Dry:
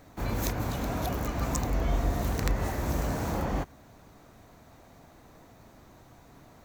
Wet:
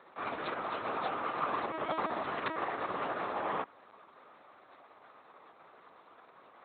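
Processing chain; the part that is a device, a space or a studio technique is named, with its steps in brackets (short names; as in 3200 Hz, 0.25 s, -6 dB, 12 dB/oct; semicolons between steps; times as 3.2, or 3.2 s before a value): talking toy (LPC vocoder at 8 kHz pitch kept; HPF 440 Hz 12 dB/oct; bell 1200 Hz +9 dB 0.41 oct); gain -1 dB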